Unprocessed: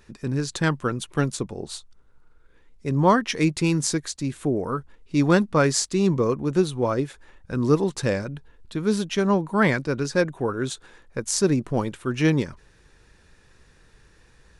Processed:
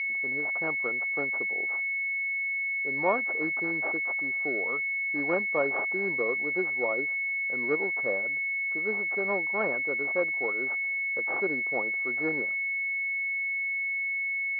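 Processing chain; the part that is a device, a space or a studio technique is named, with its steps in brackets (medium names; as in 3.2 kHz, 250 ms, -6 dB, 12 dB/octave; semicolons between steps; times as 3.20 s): toy sound module (decimation joined by straight lines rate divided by 8×; class-D stage that switches slowly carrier 2.2 kHz; cabinet simulation 640–4100 Hz, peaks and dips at 990 Hz -5 dB, 1.6 kHz -4 dB, 3.6 kHz -10 dB)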